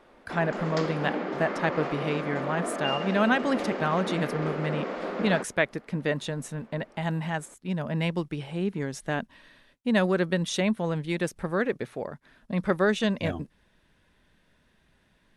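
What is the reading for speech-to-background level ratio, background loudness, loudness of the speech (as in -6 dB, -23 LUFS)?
3.5 dB, -32.5 LUFS, -29.0 LUFS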